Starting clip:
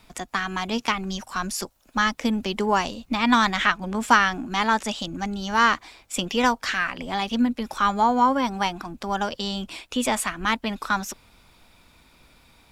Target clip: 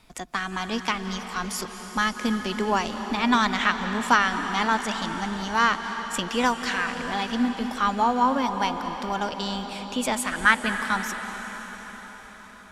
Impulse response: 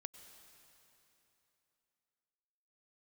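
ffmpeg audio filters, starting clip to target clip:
-filter_complex "[0:a]asettb=1/sr,asplit=3[link_01][link_02][link_03];[link_01]atrim=end=10.324[link_04];[link_02]atrim=start=10.32:end=10.72,asetpts=PTS-STARTPTS,afade=type=in:duration=0.004:curve=qsin,afade=type=out:start_time=0.396:duration=0.004:curve=qsin,equalizer=frequency=1600:width=2.3:gain=14.5[link_05];[link_03]atrim=start=10.716[link_06];[link_04][link_05]acrossfade=duration=0.004:curve1=hsin:curve2=qsin[link_07];[link_07][link_06]acrossfade=duration=0.004:curve1=qsin:curve2=hsin[link_08];[1:a]atrim=start_sample=2205,asetrate=24255,aresample=44100[link_09];[link_08][link_09]afir=irnorm=-1:irlink=0"

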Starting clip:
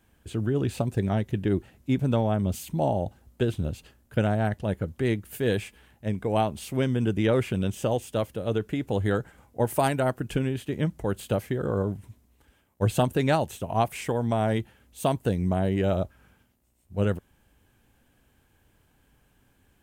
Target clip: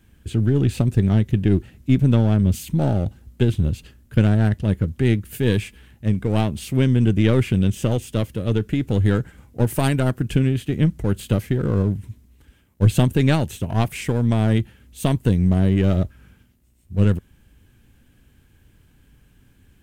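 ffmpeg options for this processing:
ffmpeg -i in.wav -filter_complex "[0:a]highshelf=frequency=3200:gain=-8,asplit=2[link_01][link_02];[link_02]aeval=exprs='clip(val(0),-1,0.0237)':channel_layout=same,volume=-4dB[link_03];[link_01][link_03]amix=inputs=2:normalize=0,equalizer=frequency=760:width_type=o:width=2:gain=-13,volume=7.5dB" out.wav

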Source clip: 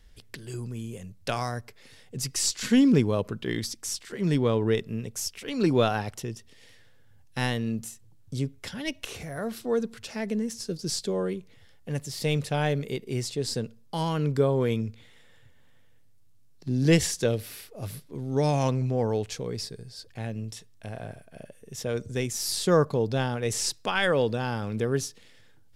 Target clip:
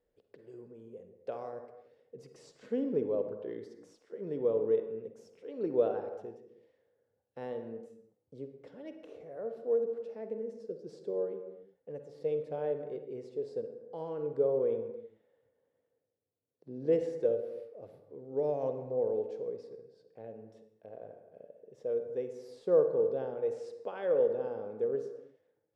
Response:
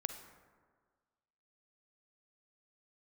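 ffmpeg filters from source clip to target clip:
-filter_complex "[0:a]bandpass=frequency=490:width_type=q:width=3.8:csg=0[link_01];[1:a]atrim=start_sample=2205,afade=type=out:start_time=0.42:duration=0.01,atrim=end_sample=18963[link_02];[link_01][link_02]afir=irnorm=-1:irlink=0"

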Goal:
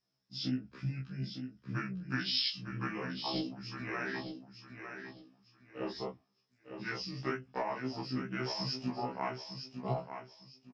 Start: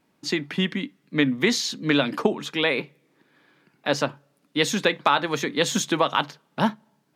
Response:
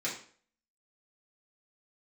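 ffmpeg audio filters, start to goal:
-filter_complex "[0:a]afwtdn=0.0501,highshelf=frequency=3300:gain=4.5,acompressor=threshold=-29dB:ratio=5,flanger=delay=17:depth=6.8:speed=2.4,atempo=0.9,lowpass=frequency=7100:width_type=q:width=15,asplit=2[link_01][link_02];[link_02]adelay=17,volume=-11.5dB[link_03];[link_01][link_03]amix=inputs=2:normalize=0,asplit=2[link_04][link_05];[link_05]aecho=0:1:670|1340|2010:0.398|0.0995|0.0249[link_06];[link_04][link_06]amix=inputs=2:normalize=0,asetrate=32667,aresample=44100,afftfilt=real='re*1.73*eq(mod(b,3),0)':imag='im*1.73*eq(mod(b,3),0)':win_size=2048:overlap=0.75"

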